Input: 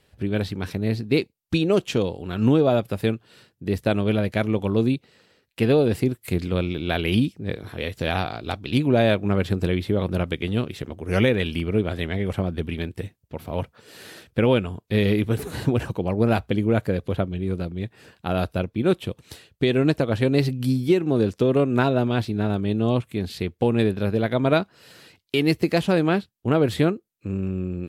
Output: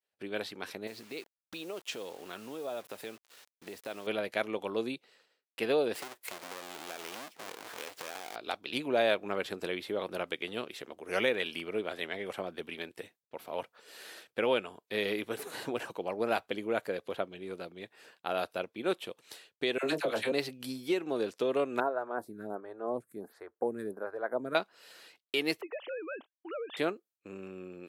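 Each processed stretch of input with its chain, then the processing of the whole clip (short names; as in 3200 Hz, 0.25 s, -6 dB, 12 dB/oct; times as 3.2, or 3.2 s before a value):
0.87–4.07 compressor, threshold -26 dBFS + requantised 8-bit, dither none
5.95–8.36 half-waves squared off + low shelf 200 Hz -9 dB + compressor 16:1, threshold -29 dBFS
19.78–20.32 high shelf 5400 Hz +6.5 dB + doubler 27 ms -9 dB + dispersion lows, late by 57 ms, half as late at 800 Hz
21.8–24.55 EQ curve 1600 Hz 0 dB, 2800 Hz -28 dB, 10000 Hz -2 dB + photocell phaser 1.4 Hz
25.61–26.77 sine-wave speech + compressor 4:1, threshold -30 dBFS
whole clip: HPF 490 Hz 12 dB/oct; expander -53 dBFS; gain -5 dB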